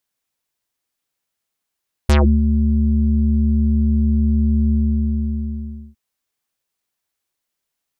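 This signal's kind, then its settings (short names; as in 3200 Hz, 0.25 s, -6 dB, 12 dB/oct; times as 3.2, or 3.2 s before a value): synth note square D2 24 dB/oct, low-pass 240 Hz, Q 2.2, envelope 6 oct, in 0.17 s, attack 3 ms, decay 0.31 s, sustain -6.5 dB, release 1.24 s, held 2.62 s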